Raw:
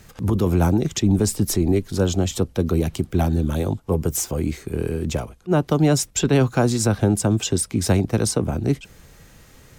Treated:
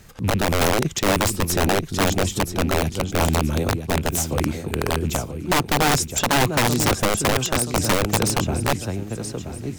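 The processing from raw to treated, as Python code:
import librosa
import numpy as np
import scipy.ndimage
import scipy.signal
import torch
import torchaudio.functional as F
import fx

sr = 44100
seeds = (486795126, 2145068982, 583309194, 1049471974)

y = fx.rattle_buzz(x, sr, strikes_db=-21.0, level_db=-31.0)
y = fx.echo_feedback(y, sr, ms=977, feedback_pct=40, wet_db=-9.5)
y = (np.mod(10.0 ** (12.0 / 20.0) * y + 1.0, 2.0) - 1.0) / 10.0 ** (12.0 / 20.0)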